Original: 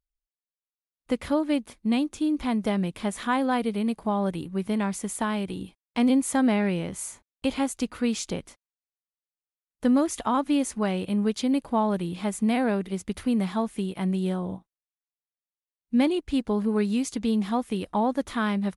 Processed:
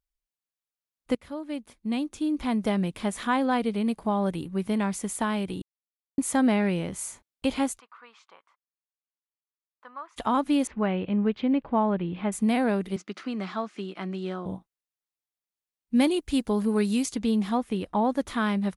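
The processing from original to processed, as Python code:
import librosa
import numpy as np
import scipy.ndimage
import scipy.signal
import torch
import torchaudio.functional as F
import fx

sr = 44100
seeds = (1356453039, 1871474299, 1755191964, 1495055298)

y = fx.lowpass(x, sr, hz=9300.0, slope=12, at=(3.3, 3.85))
y = fx.ladder_bandpass(y, sr, hz=1200.0, resonance_pct=65, at=(7.78, 10.16), fade=0.02)
y = fx.lowpass(y, sr, hz=2900.0, slope=24, at=(10.67, 12.32))
y = fx.cabinet(y, sr, low_hz=220.0, low_slope=24, high_hz=6100.0, hz=(240.0, 490.0, 890.0, 1300.0, 3500.0), db=(-7, -7, -5, 6, -3), at=(12.96, 14.46))
y = fx.high_shelf(y, sr, hz=5700.0, db=11.0, at=(15.95, 17.06))
y = fx.high_shelf(y, sr, hz=4500.0, db=-7.0, at=(17.58, 18.05))
y = fx.edit(y, sr, fx.fade_in_from(start_s=1.15, length_s=1.47, floor_db=-16.5),
    fx.silence(start_s=5.62, length_s=0.56), tone=tone)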